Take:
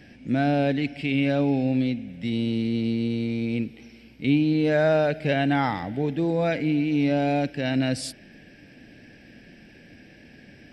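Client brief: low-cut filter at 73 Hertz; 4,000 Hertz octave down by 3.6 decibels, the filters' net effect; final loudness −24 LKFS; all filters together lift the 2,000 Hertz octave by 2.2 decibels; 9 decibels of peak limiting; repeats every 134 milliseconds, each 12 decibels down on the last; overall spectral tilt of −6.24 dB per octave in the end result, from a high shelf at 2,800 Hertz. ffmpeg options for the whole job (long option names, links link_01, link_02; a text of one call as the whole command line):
ffmpeg -i in.wav -af "highpass=73,equalizer=frequency=2000:width_type=o:gain=5.5,highshelf=frequency=2800:gain=-3.5,equalizer=frequency=4000:width_type=o:gain=-5,alimiter=limit=-18.5dB:level=0:latency=1,aecho=1:1:134|268|402:0.251|0.0628|0.0157,volume=3.5dB" out.wav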